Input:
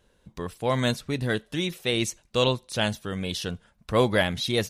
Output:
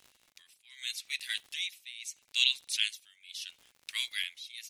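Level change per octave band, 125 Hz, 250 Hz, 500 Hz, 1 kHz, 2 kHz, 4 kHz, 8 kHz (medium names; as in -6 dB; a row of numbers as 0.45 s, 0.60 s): under -40 dB, under -40 dB, under -40 dB, under -30 dB, -6.0 dB, -1.5 dB, -3.5 dB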